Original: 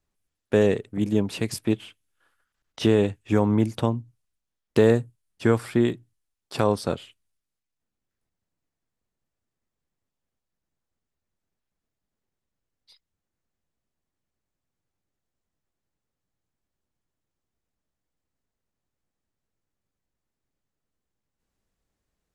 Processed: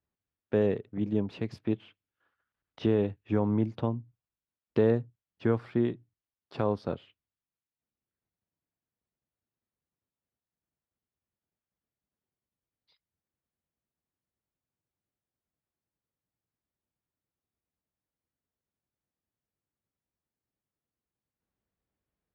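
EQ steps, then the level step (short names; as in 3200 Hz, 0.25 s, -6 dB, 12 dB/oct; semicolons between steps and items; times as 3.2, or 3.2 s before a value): HPF 59 Hz; dynamic EQ 2100 Hz, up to -3 dB, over -40 dBFS, Q 0.79; air absorption 270 m; -5.5 dB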